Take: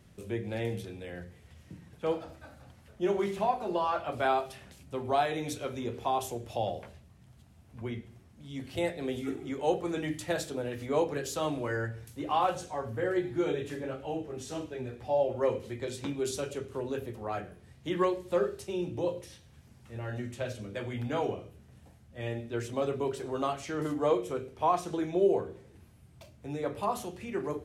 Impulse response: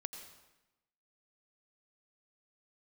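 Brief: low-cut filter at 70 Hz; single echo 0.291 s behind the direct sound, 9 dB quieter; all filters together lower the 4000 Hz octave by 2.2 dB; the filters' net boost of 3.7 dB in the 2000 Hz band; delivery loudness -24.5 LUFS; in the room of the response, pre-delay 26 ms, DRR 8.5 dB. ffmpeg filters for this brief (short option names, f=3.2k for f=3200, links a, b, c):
-filter_complex "[0:a]highpass=70,equalizer=f=2k:t=o:g=6,equalizer=f=4k:t=o:g=-5.5,aecho=1:1:291:0.355,asplit=2[a][b];[1:a]atrim=start_sample=2205,adelay=26[c];[b][c]afir=irnorm=-1:irlink=0,volume=-6.5dB[d];[a][d]amix=inputs=2:normalize=0,volume=7.5dB"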